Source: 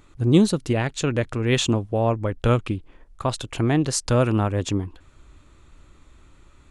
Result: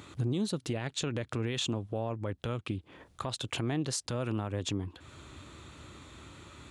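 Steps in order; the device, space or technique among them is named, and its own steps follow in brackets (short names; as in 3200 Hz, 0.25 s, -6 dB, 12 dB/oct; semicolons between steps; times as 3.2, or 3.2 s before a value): broadcast voice chain (HPF 79 Hz 24 dB/oct; de-esser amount 35%; compressor 4:1, threshold -37 dBFS, peak gain reduction 21.5 dB; bell 3600 Hz +4.5 dB 0.62 oct; limiter -29 dBFS, peak gain reduction 8 dB); gain +6.5 dB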